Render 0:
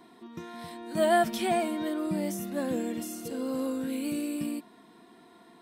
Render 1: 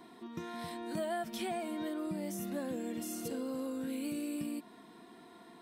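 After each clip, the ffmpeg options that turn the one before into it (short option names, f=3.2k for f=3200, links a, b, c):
-af "acompressor=threshold=-35dB:ratio=6"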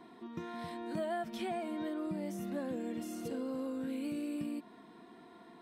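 -af "highshelf=f=5.1k:g=-11.5"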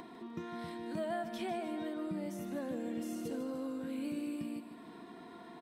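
-af "acompressor=mode=upward:threshold=-43dB:ratio=2.5,aecho=1:1:151|302|453|604|755:0.316|0.158|0.0791|0.0395|0.0198,volume=-1dB"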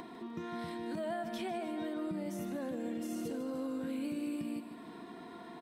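-af "alimiter=level_in=8.5dB:limit=-24dB:level=0:latency=1:release=72,volume=-8.5dB,volume=2.5dB"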